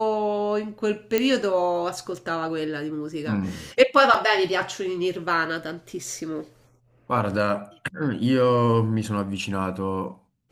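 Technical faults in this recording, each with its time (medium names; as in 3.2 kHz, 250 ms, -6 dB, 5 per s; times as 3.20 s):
1.18 s: pop -7 dBFS
4.14 s: dropout 4.7 ms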